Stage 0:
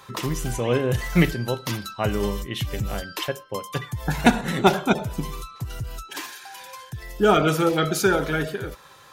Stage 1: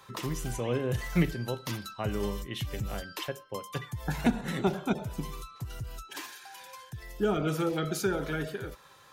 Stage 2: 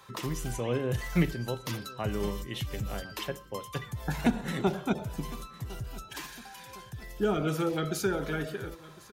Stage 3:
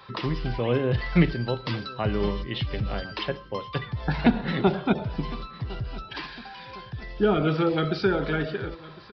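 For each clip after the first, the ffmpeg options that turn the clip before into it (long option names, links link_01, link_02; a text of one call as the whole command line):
ffmpeg -i in.wav -filter_complex "[0:a]acrossover=split=420[link_01][link_02];[link_02]acompressor=threshold=-25dB:ratio=6[link_03];[link_01][link_03]amix=inputs=2:normalize=0,volume=-7dB" out.wav
ffmpeg -i in.wav -af "aecho=1:1:1057|2114|3171|4228:0.1|0.05|0.025|0.0125" out.wav
ffmpeg -i in.wav -af "aresample=11025,aresample=44100,volume=6dB" out.wav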